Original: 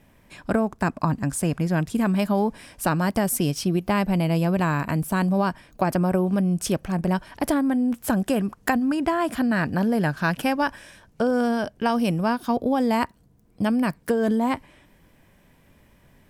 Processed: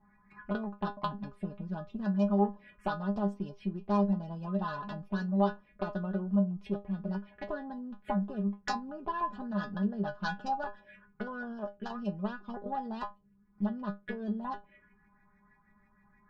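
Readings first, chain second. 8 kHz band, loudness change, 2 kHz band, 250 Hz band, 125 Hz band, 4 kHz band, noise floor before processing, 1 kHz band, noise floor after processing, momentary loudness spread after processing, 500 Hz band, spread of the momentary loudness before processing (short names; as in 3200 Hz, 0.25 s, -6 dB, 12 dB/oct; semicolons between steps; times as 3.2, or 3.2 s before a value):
under -25 dB, -11.0 dB, -13.5 dB, -10.5 dB, -11.5 dB, -14.0 dB, -58 dBFS, -9.5 dB, -67 dBFS, 11 LU, -11.5 dB, 4 LU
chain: in parallel at +1.5 dB: compressor, threshold -35 dBFS, peak gain reduction 17 dB; on the sum: LFO low-pass saw up 6.3 Hz 880–2500 Hz; added harmonics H 2 -19 dB, 3 -14 dB, 4 -19 dB, 5 -38 dB, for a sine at -3 dBFS; envelope phaser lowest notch 490 Hz, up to 2200 Hz, full sweep at -24.5 dBFS; metallic resonator 200 Hz, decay 0.21 s, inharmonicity 0.002; gain +3.5 dB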